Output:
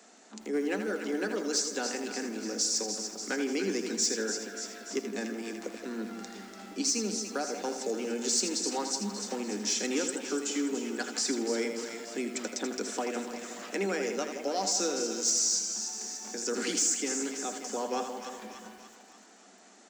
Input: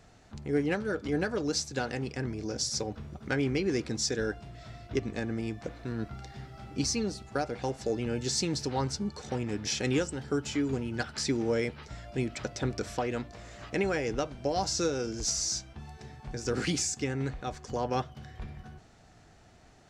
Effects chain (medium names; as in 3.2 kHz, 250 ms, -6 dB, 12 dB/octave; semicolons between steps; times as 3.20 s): Chebyshev high-pass 190 Hz, order 10; peaking EQ 7.2 kHz +10.5 dB 0.8 oct; on a send: two-band feedback delay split 960 Hz, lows 174 ms, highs 291 ms, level -9.5 dB; on the sum: resampled via 22.05 kHz; in parallel at 0 dB: compression, threshold -40 dBFS, peak gain reduction 18 dB; on the sum: saturation -14 dBFS, distortion -25 dB; bit-crushed delay 81 ms, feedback 35%, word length 8-bit, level -8 dB; trim -3.5 dB